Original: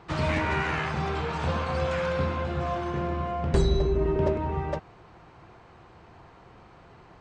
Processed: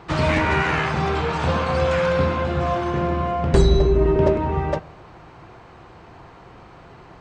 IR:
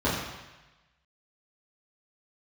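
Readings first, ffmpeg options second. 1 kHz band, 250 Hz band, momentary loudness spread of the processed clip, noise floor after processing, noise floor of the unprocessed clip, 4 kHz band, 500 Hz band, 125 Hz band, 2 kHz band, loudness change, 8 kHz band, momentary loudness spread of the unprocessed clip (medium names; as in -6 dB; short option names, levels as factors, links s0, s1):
+7.0 dB, +7.5 dB, 6 LU, -45 dBFS, -53 dBFS, +7.0 dB, +8.0 dB, +6.5 dB, +7.0 dB, +7.5 dB, +7.0 dB, 5 LU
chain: -filter_complex "[0:a]asplit=2[s0][s1];[1:a]atrim=start_sample=2205[s2];[s1][s2]afir=irnorm=-1:irlink=0,volume=0.0188[s3];[s0][s3]amix=inputs=2:normalize=0,volume=2.24"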